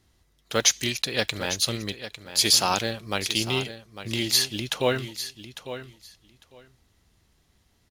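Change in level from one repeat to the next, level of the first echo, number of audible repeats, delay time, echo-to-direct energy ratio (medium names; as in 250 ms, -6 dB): -16.0 dB, -12.0 dB, 2, 851 ms, -12.0 dB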